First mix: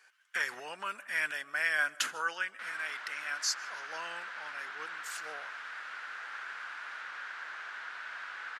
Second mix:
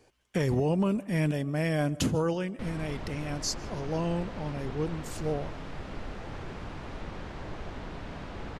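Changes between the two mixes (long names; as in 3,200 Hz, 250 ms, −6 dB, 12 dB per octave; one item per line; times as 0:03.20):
background: send on
master: remove high-pass with resonance 1,500 Hz, resonance Q 4.7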